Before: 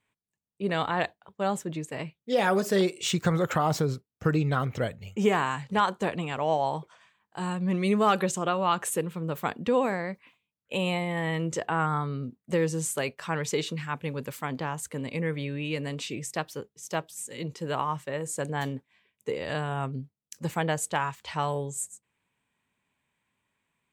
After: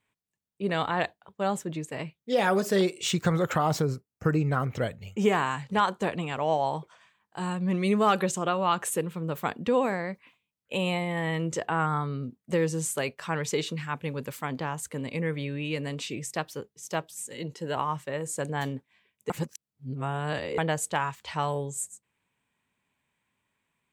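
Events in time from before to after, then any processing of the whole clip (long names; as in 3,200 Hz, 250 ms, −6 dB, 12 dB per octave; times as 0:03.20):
0:03.82–0:04.70: parametric band 3,500 Hz −14.5 dB 0.44 octaves
0:17.34–0:17.77: notch comb filter 1,200 Hz
0:19.30–0:20.58: reverse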